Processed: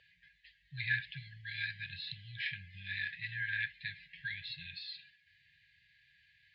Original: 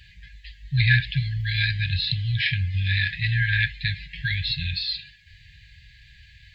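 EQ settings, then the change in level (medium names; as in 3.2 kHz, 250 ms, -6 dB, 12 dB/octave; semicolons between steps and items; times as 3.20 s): band-pass filter 510 Hz, Q 3.1; distance through air 51 m; tilt EQ +3 dB/octave; +6.0 dB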